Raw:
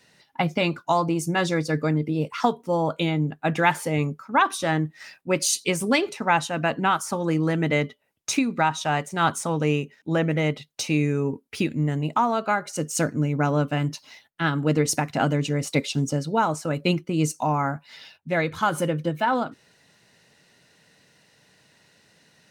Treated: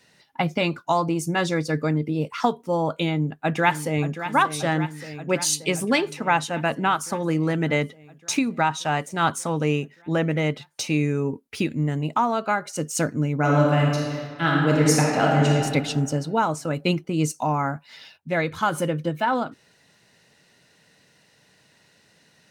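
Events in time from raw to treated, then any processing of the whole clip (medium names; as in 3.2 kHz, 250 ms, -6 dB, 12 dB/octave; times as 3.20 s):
3.09–4.25 s: echo throw 580 ms, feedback 75%, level -11 dB
13.37–15.54 s: reverb throw, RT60 1.9 s, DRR -2.5 dB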